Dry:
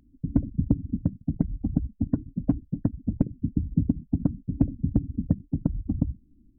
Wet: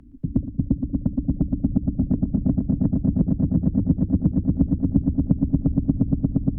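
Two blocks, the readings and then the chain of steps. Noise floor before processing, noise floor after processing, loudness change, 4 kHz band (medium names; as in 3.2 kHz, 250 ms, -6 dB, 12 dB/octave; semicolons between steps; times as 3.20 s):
-60 dBFS, -35 dBFS, +6.0 dB, no reading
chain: low-pass that closes with the level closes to 400 Hz, closed at -18.5 dBFS; echo with a slow build-up 117 ms, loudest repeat 8, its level -6.5 dB; three bands compressed up and down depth 40%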